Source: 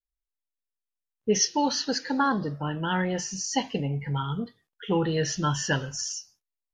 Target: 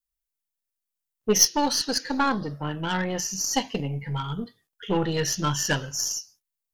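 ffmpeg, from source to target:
ffmpeg -i in.wav -af "acontrast=54,aeval=exprs='0.501*(cos(1*acos(clip(val(0)/0.501,-1,1)))-cos(1*PI/2))+0.0562*(cos(3*acos(clip(val(0)/0.501,-1,1)))-cos(3*PI/2))+0.0355*(cos(6*acos(clip(val(0)/0.501,-1,1)))-cos(6*PI/2))+0.00398*(cos(7*acos(clip(val(0)/0.501,-1,1)))-cos(7*PI/2))+0.01*(cos(8*acos(clip(val(0)/0.501,-1,1)))-cos(8*PI/2))':channel_layout=same,crystalizer=i=1.5:c=0,volume=-3dB" out.wav

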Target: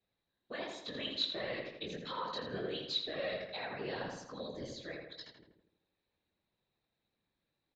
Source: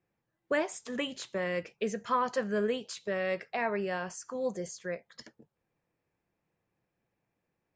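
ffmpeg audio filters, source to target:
ffmpeg -i in.wav -filter_complex "[0:a]alimiter=level_in=3dB:limit=-24dB:level=0:latency=1:release=143,volume=-3dB,flanger=delay=18:depth=5.3:speed=1.4,afftfilt=real='hypot(re,im)*cos(2*PI*random(0))':imag='hypot(re,im)*sin(2*PI*random(1))':win_size=512:overlap=0.75,lowpass=frequency=3900:width_type=q:width=15,asplit=2[link_01][link_02];[link_02]adelay=82,lowpass=frequency=2700:poles=1,volume=-3.5dB,asplit=2[link_03][link_04];[link_04]adelay=82,lowpass=frequency=2700:poles=1,volume=0.52,asplit=2[link_05][link_06];[link_06]adelay=82,lowpass=frequency=2700:poles=1,volume=0.52,asplit=2[link_07][link_08];[link_08]adelay=82,lowpass=frequency=2700:poles=1,volume=0.52,asplit=2[link_09][link_10];[link_10]adelay=82,lowpass=frequency=2700:poles=1,volume=0.52,asplit=2[link_11][link_12];[link_12]adelay=82,lowpass=frequency=2700:poles=1,volume=0.52,asplit=2[link_13][link_14];[link_14]adelay=82,lowpass=frequency=2700:poles=1,volume=0.52[link_15];[link_03][link_05][link_07][link_09][link_11][link_13][link_15]amix=inputs=7:normalize=0[link_16];[link_01][link_16]amix=inputs=2:normalize=0,volume=2dB" out.wav

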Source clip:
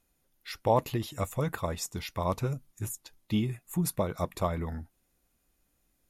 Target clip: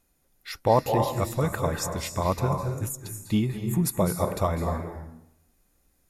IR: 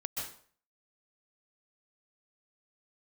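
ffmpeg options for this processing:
-filter_complex "[0:a]asplit=2[link_01][link_02];[link_02]equalizer=frequency=3100:width_type=o:width=0.35:gain=-14[link_03];[1:a]atrim=start_sample=2205,asetrate=27342,aresample=44100[link_04];[link_03][link_04]afir=irnorm=-1:irlink=0,volume=-4dB[link_05];[link_01][link_05]amix=inputs=2:normalize=0"

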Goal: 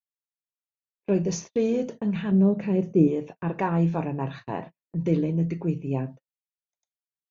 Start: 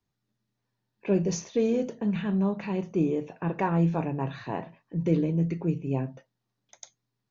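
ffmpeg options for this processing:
ffmpeg -i in.wav -filter_complex "[0:a]agate=range=-40dB:threshold=-39dB:ratio=16:detection=peak,asettb=1/sr,asplit=3[link_01][link_02][link_03];[link_01]atrim=end=2.314[link_04];[link_02]atrim=start=2.31:end=3.08,asetpts=PTS-STARTPTS,afade=type=in:duration=0.004:curve=qsin,afade=type=out:start_time=0.766:duration=0.004:curve=qsin,equalizer=frequency=125:width_type=o:width=1:gain=6,equalizer=frequency=250:width_type=o:width=1:gain=4,equalizer=frequency=500:width_type=o:width=1:gain=7,equalizer=frequency=1000:width_type=o:width=1:gain=-9,equalizer=frequency=4000:width_type=o:width=1:gain=-7[link_05];[link_03]atrim=start=3.076[link_06];[link_04][link_05]acrossfade=duration=0.004:curve1=hsin:curve2=qsin[link_07];[link_07][link_06]acrossfade=duration=0.004:curve1=qsin:curve2=hsin,volume=1dB" out.wav

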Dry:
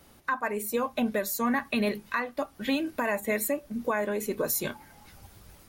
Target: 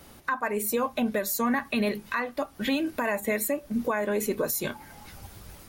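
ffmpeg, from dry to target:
ffmpeg -i in.wav -af "alimiter=limit=-23.5dB:level=0:latency=1:release=262,volume=6dB" out.wav

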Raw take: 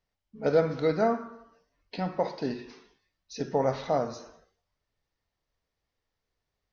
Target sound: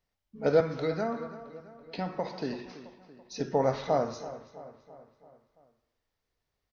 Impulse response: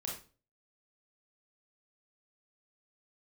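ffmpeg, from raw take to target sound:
-filter_complex "[0:a]asettb=1/sr,asplit=3[link_01][link_02][link_03];[link_01]atrim=end=0.604[link_04];[link_02]atrim=start=0.6:end=2.66,asetpts=PTS-STARTPTS,afade=type=in:duration=0.004:curve=qsin,afade=type=out:start_time=2.056:duration=0.004:curve=qsin,acrossover=split=280|1000[link_05][link_06][link_07];[link_05]acompressor=threshold=-36dB:ratio=4[link_08];[link_06]acompressor=threshold=-33dB:ratio=4[link_09];[link_07]acompressor=threshold=-39dB:ratio=4[link_10];[link_08][link_09][link_10]amix=inputs=3:normalize=0[link_11];[link_03]atrim=start=2.656[link_12];[link_04][link_11]acrossfade=duration=0.004:curve1=hsin:curve2=qsin[link_13];[link_13][link_12]acrossfade=duration=0.004:curve1=qsin:curve2=hsin,asplit=2[link_14][link_15];[link_15]adelay=333,lowpass=frequency=4100:poles=1,volume=-15dB,asplit=2[link_16][link_17];[link_17]adelay=333,lowpass=frequency=4100:poles=1,volume=0.54,asplit=2[link_18][link_19];[link_19]adelay=333,lowpass=frequency=4100:poles=1,volume=0.54,asplit=2[link_20][link_21];[link_21]adelay=333,lowpass=frequency=4100:poles=1,volume=0.54,asplit=2[link_22][link_23];[link_23]adelay=333,lowpass=frequency=4100:poles=1,volume=0.54[link_24];[link_14][link_16][link_18][link_20][link_22][link_24]amix=inputs=6:normalize=0"

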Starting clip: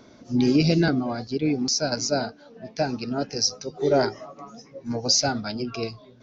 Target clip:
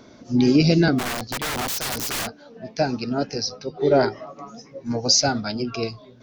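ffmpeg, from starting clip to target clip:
ffmpeg -i in.wav -filter_complex "[0:a]asplit=3[link_01][link_02][link_03];[link_01]afade=type=out:start_time=0.98:duration=0.02[link_04];[link_02]aeval=exprs='(mod(16.8*val(0)+1,2)-1)/16.8':channel_layout=same,afade=type=in:start_time=0.98:duration=0.02,afade=type=out:start_time=2.26:duration=0.02[link_05];[link_03]afade=type=in:start_time=2.26:duration=0.02[link_06];[link_04][link_05][link_06]amix=inputs=3:normalize=0,asettb=1/sr,asplit=3[link_07][link_08][link_09];[link_07]atrim=end=3.364[link_10];[link_08]atrim=start=3.36:end=4.27,asetpts=PTS-STARTPTS,afade=type=in:duration=0.004:curve=qsin,afade=type=out:start_time=0.906:duration=0.004:curve=qsin,lowpass=frequency=4500:width=0.5412,lowpass=frequency=4500:width=1.3066[link_11];[link_09]atrim=start=4.266[link_12];[link_10][link_11]acrossfade=duration=0.004:curve1=hsin:curve2=qsin[link_13];[link_13][link_12]acrossfade=duration=0.004:curve1=qsin:curve2=hsin,volume=3dB" out.wav

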